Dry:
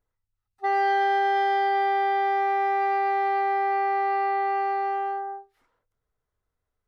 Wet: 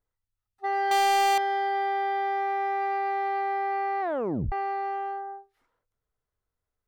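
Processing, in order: 0.91–1.38 sample leveller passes 5; 4.01 tape stop 0.51 s; gain -4 dB

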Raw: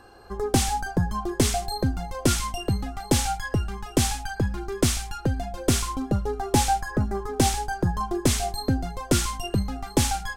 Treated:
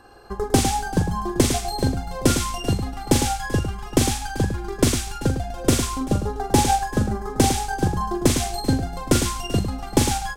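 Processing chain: tapped delay 42/105/386 ms -6.5/-5/-15 dB; transient shaper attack +4 dB, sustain -2 dB

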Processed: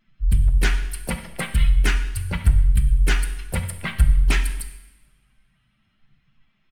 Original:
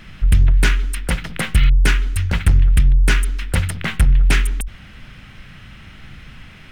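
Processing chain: per-bin expansion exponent 2; in parallel at -2.5 dB: limiter -14 dBFS, peak gain reduction 7.5 dB; on the sum: harmoniser -12 st -15 dB, +4 st -12 dB; two-slope reverb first 0.97 s, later 2.5 s, from -24 dB, DRR 7 dB; gain -5.5 dB

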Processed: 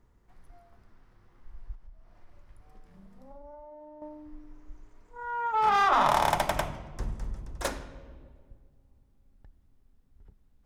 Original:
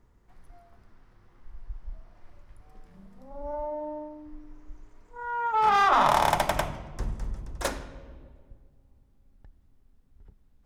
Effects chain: 1.74–4.02 compressor 16:1, threshold -42 dBFS, peak gain reduction 13.5 dB; gain -2 dB

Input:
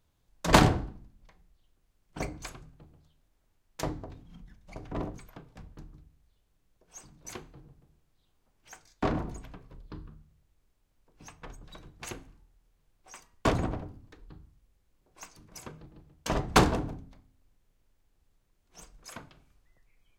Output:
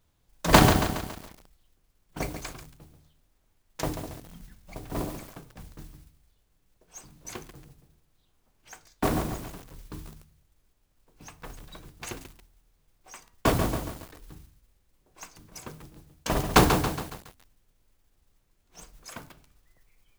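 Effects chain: modulation noise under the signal 14 dB; lo-fi delay 0.139 s, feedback 55%, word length 7-bit, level -7.5 dB; gain +2.5 dB

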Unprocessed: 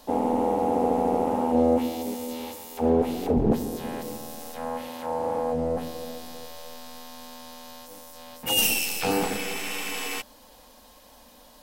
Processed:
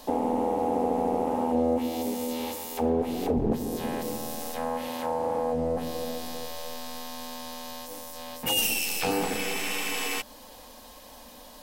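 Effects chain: notch 1400 Hz, Q 25; compressor 2:1, threshold -33 dBFS, peak gain reduction 9 dB; notches 50/100/150/200 Hz; gain +4.5 dB

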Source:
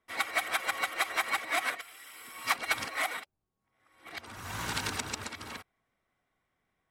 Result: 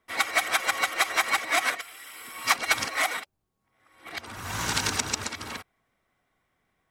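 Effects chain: dynamic EQ 6100 Hz, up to +6 dB, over -51 dBFS, Q 1.7; gain +5.5 dB

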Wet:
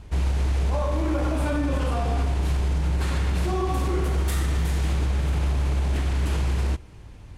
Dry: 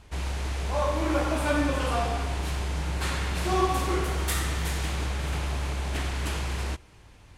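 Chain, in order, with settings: low shelf 480 Hz +10 dB; limiter -16.5 dBFS, peak gain reduction 9.5 dB

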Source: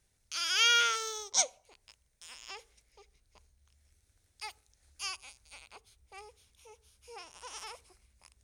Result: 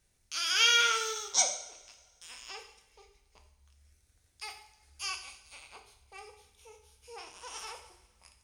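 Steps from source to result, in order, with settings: vibrato 15 Hz 8.4 cents; two-slope reverb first 0.65 s, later 1.9 s, from -17 dB, DRR 2.5 dB

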